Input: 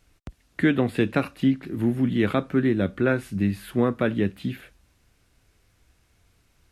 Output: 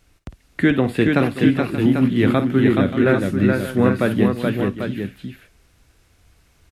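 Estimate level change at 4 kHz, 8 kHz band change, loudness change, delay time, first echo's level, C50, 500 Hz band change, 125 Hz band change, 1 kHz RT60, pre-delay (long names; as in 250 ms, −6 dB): +6.5 dB, can't be measured, +6.0 dB, 54 ms, −12.5 dB, no reverb audible, +6.5 dB, +6.5 dB, no reverb audible, no reverb audible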